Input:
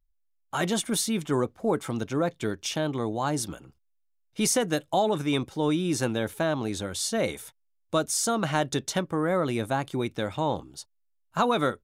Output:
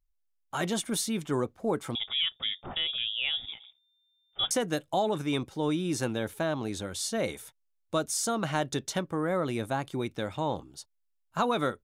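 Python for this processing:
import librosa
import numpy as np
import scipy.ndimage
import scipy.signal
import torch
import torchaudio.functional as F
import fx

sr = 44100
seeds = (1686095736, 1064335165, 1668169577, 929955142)

y = fx.freq_invert(x, sr, carrier_hz=3600, at=(1.95, 4.51))
y = y * librosa.db_to_amplitude(-3.5)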